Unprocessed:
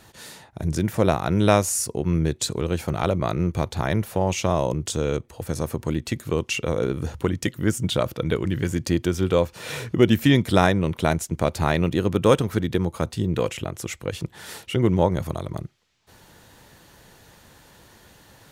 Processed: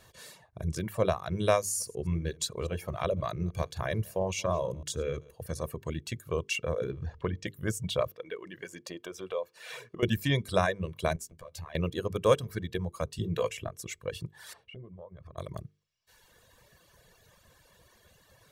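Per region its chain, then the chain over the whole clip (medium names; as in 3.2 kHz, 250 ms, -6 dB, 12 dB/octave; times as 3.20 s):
1.59–5.70 s: chunks repeated in reverse 120 ms, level -13 dB + band-stop 7.8 kHz, Q 22
6.91–7.47 s: companding laws mixed up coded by mu + distance through air 140 m
8.11–10.03 s: high-pass 330 Hz + compression 2.5:1, threshold -25 dBFS + treble shelf 4.6 kHz -7 dB
11.16–11.75 s: compression 16:1, threshold -30 dBFS + doubling 12 ms -6 dB
13.18–13.69 s: doubling 18 ms -8.5 dB + three bands compressed up and down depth 40%
14.53–15.38 s: band-stop 7 kHz, Q 7.5 + compression, threshold -34 dBFS + tape spacing loss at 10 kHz 21 dB
whole clip: hum notches 50/100/150/200/250/300/350/400/450 Hz; reverb removal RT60 1.7 s; comb 1.8 ms, depth 51%; trim -7.5 dB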